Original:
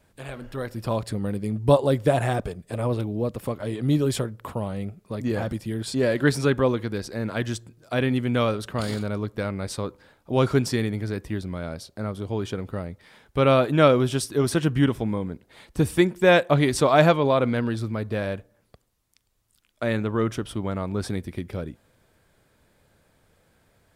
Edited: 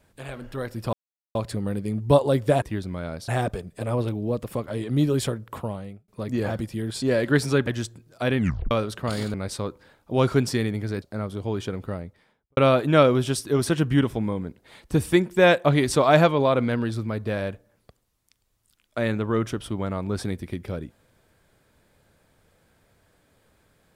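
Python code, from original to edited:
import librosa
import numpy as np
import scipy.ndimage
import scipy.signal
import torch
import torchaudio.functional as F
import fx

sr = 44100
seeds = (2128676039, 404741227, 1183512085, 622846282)

y = fx.studio_fade_out(x, sr, start_s=12.71, length_s=0.71)
y = fx.edit(y, sr, fx.insert_silence(at_s=0.93, length_s=0.42),
    fx.fade_out_span(start_s=4.52, length_s=0.48),
    fx.cut(start_s=6.59, length_s=0.79),
    fx.tape_stop(start_s=8.08, length_s=0.34),
    fx.cut(start_s=9.05, length_s=0.48),
    fx.move(start_s=11.21, length_s=0.66, to_s=2.2), tone=tone)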